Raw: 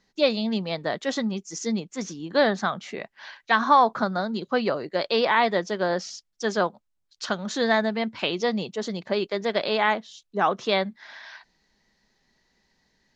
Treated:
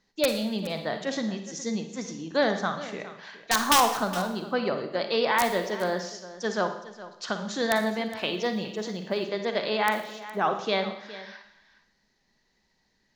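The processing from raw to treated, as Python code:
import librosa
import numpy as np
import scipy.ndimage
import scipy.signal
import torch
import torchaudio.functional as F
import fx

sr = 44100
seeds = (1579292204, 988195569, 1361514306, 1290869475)

p1 = (np.mod(10.0 ** (8.0 / 20.0) * x + 1.0, 2.0) - 1.0) / 10.0 ** (8.0 / 20.0)
p2 = fx.rev_schroeder(p1, sr, rt60_s=0.73, comb_ms=38, drr_db=7.0)
p3 = fx.quant_companded(p2, sr, bits=8, at=(8.09, 9.29))
p4 = p3 + fx.echo_single(p3, sr, ms=415, db=-16.0, dry=0)
y = F.gain(torch.from_numpy(p4), -3.5).numpy()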